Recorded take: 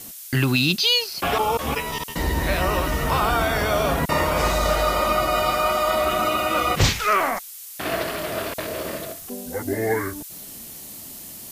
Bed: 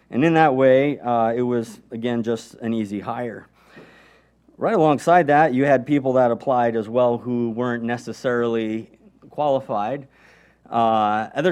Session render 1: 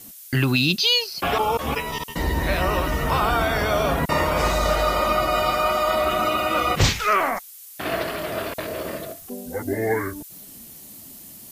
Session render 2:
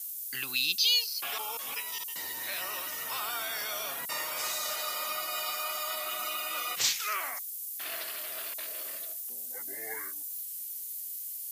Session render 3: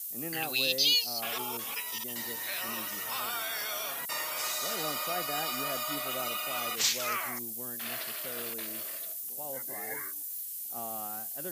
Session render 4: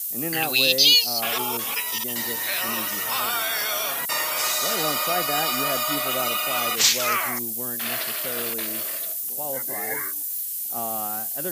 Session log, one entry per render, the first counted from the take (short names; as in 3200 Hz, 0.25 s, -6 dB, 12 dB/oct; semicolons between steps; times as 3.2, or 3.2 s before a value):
denoiser 6 dB, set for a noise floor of -39 dBFS
HPF 83 Hz; differentiator
add bed -23.5 dB
gain +9.5 dB